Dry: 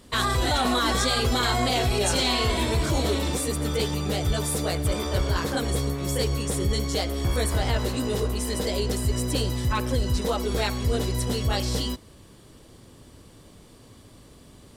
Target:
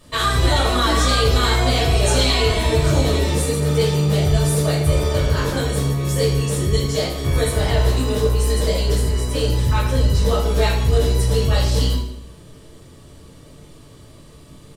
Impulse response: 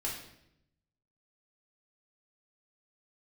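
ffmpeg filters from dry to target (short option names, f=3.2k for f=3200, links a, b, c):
-filter_complex "[0:a]asettb=1/sr,asplit=3[a][b][c];[a]atrim=end=7.804[d];[b]atrim=start=7.8:end=8.47,asetpts=PTS-STARTPTS,afade=t=in:d=0.004:c=qsin,afade=t=out:st=0.666:d=0.004:c=qsin,acrusher=bits=8:mode=log:mix=0:aa=0.000001[e];[c]atrim=start=8.466[f];[d][e]acrossfade=d=0.004:c1=hsin:c2=qsin[g];[g][f]acrossfade=d=0.004:c1=qsin:c2=hsin,asettb=1/sr,asplit=3[h][i][j];[h]atrim=end=9.014[k];[i]atrim=start=9.01:end=9.41,asetpts=PTS-STARTPTS,afade=t=in:d=0.004:c=qsin,afade=t=out:st=0.396:d=0.004:c=qsin,bass=f=250:g=-6,treble=f=4k:g=-4[l];[j]atrim=start=9.406[m];[k][l]acrossfade=d=0.004:c1=hsin:c2=qsin[n];[n][m]acrossfade=d=0.004:c1=qsin:c2=hsin,aecho=1:1:80|160|240|320|400:0.224|0.112|0.056|0.028|0.014[o];[1:a]atrim=start_sample=2205,asetrate=61740,aresample=44100[p];[o][p]afir=irnorm=-1:irlink=0,volume=4.5dB"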